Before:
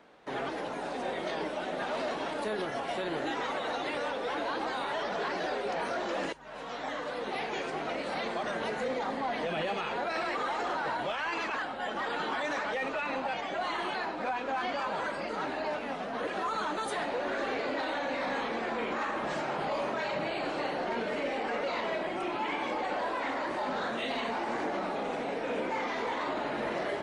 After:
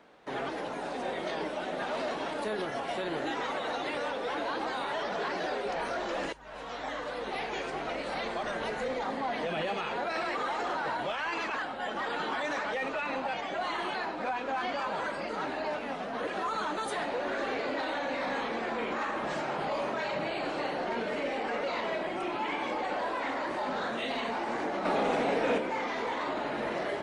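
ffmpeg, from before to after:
-filter_complex "[0:a]asplit=3[a][b][c];[a]afade=t=out:st=5.67:d=0.02[d];[b]asubboost=boost=2.5:cutoff=92,afade=t=in:st=5.67:d=0.02,afade=t=out:st=9.04:d=0.02[e];[c]afade=t=in:st=9.04:d=0.02[f];[d][e][f]amix=inputs=3:normalize=0,asettb=1/sr,asplit=3[g][h][i];[g]atrim=end=24.854[j];[h]atrim=start=24.85:end=25.58,asetpts=PTS-STARTPTS,afade=t=in:d=0.004:c=qsin,afade=t=out:st=0.726:d=0.004:c=qsin,acontrast=49[k];[i]atrim=start=25.576[l];[j][k]acrossfade=d=0.004:c1=hsin:c2=qsin[m];[m][l]acrossfade=d=0.004:c1=qsin:c2=hsin"

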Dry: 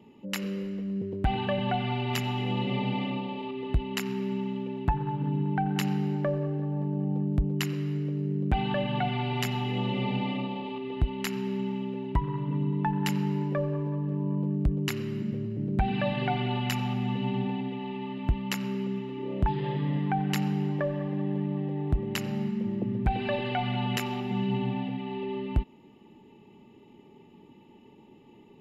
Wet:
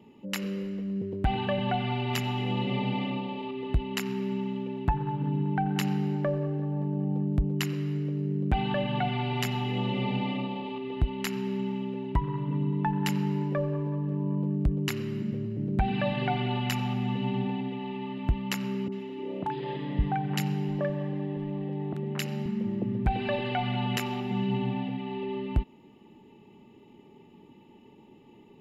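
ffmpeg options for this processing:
-filter_complex "[0:a]asettb=1/sr,asplit=3[a][b][c];[a]atrim=end=18.884[d];[b]atrim=start=18.88:end=22.46,asetpts=PTS-STARTPTS,afade=t=in:d=0.004:c=qsin,afade=t=out:st=3.576:d=0.004:c=qsin,acrossover=split=180|1300[e][f][g];[g]adelay=40[h];[e]adelay=560[i];[i][f][h]amix=inputs=3:normalize=0,atrim=end_sample=157878[j];[c]atrim=start=22.456[k];[d][j]acrossfade=d=0.004:c1=hsin:c2=qsin[l];[l][k]acrossfade=d=0.004:c1=qsin:c2=hsin"

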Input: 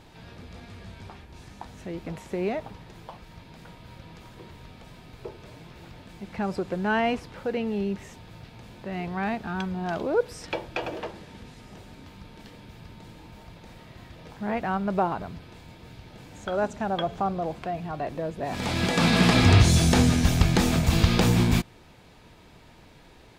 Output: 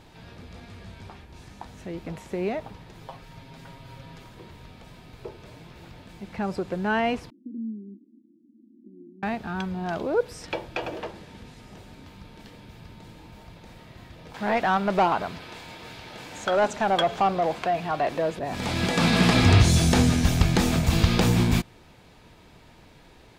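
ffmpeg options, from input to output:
-filter_complex "[0:a]asettb=1/sr,asplit=3[a][b][c];[a]atrim=end=3.004[d];[b]atrim=start=3:end=4.24,asetpts=PTS-STARTPTS,afade=t=in:d=0.004:c=qsin,afade=t=out:st=1.236:d=0.004:c=qsin,aecho=1:1:7.4:0.65,atrim=end_sample=54684[e];[c]atrim=start=4.236[f];[d][e]acrossfade=d=0.004:c1=hsin:c2=qsin[g];[g][f]acrossfade=d=0.004:c1=qsin:c2=hsin,asettb=1/sr,asplit=3[h][i][j];[h]atrim=end=7.304[k];[i]atrim=start=7.3:end=9.23,asetpts=PTS-STARTPTS,afade=t=in:d=0.004:c=qsin,afade=t=out:st=1.926:d=0.004:c=qsin,asuperpass=centerf=270:order=8:qfactor=2.3[l];[j]atrim=start=9.226[m];[k][l]acrossfade=d=0.004:c1=hsin:c2=qsin[n];[n][m]acrossfade=d=0.004:c1=qsin:c2=hsin,asettb=1/sr,asplit=3[o][p][q];[o]atrim=end=14.344[r];[p]atrim=start=14.34:end=18.39,asetpts=PTS-STARTPTS,afade=t=in:d=0.004:c=qsin,afade=t=out:st=4.046:d=0.004:c=qsin,asplit=2[s][t];[t]highpass=f=720:p=1,volume=16dB,asoftclip=type=tanh:threshold=-11.5dB[u];[s][u]amix=inputs=2:normalize=0,lowpass=f=7.8k:p=1,volume=-6dB[v];[q]atrim=start=18.386[w];[r][v]acrossfade=d=0.004:c1=hsin:c2=qsin[x];[x][w]acrossfade=d=0.004:c1=qsin:c2=hsin"

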